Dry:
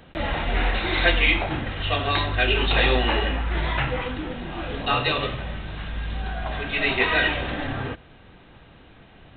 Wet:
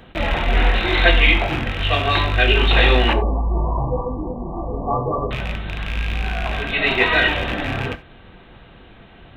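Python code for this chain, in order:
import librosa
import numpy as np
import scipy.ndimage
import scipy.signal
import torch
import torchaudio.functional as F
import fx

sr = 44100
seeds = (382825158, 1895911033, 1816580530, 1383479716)

y = fx.rattle_buzz(x, sr, strikes_db=-30.0, level_db=-20.0)
y = fx.brickwall_lowpass(y, sr, high_hz=1200.0, at=(3.13, 5.31))
y = fx.rev_gated(y, sr, seeds[0], gate_ms=110, shape='falling', drr_db=9.5)
y = y * librosa.db_to_amplitude(4.0)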